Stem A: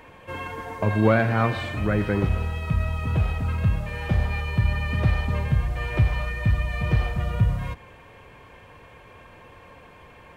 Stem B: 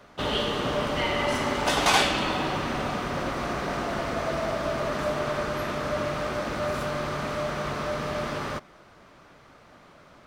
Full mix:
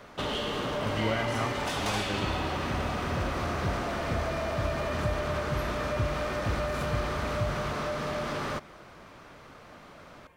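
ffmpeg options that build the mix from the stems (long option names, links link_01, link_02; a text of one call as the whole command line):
ffmpeg -i stem1.wav -i stem2.wav -filter_complex "[0:a]highshelf=frequency=9700:gain=10,volume=-11.5dB[link_01];[1:a]acompressor=threshold=-29dB:ratio=6,asoftclip=type=tanh:threshold=-27.5dB,volume=2.5dB[link_02];[link_01][link_02]amix=inputs=2:normalize=0" out.wav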